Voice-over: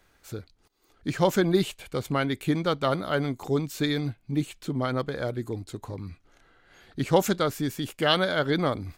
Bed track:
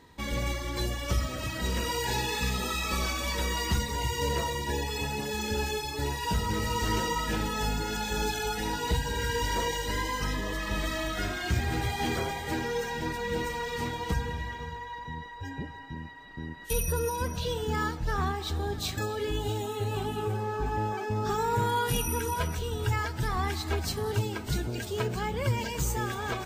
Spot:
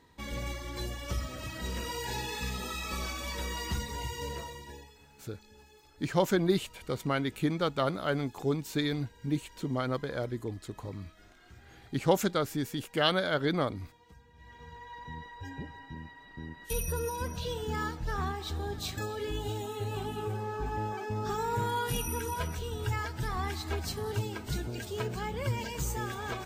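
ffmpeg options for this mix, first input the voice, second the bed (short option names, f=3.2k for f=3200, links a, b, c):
-filter_complex "[0:a]adelay=4950,volume=-4dB[a];[1:a]volume=17dB,afade=t=out:st=3.97:d=1:silence=0.0891251,afade=t=in:st=14.33:d=0.8:silence=0.0707946[b];[a][b]amix=inputs=2:normalize=0"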